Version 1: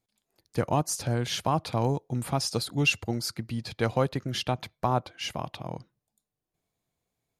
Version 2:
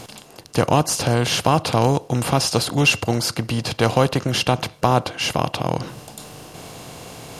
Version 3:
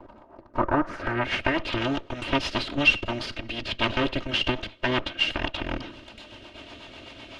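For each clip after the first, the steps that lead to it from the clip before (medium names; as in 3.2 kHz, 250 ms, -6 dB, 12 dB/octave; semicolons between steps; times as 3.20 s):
spectral levelling over time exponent 0.6; reverse; upward compressor, threshold -31 dBFS; reverse; trim +6.5 dB
comb filter that takes the minimum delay 3.2 ms; low-pass sweep 1 kHz -> 3.1 kHz, 0.49–1.73 s; rotary cabinet horn 8 Hz; trim -3 dB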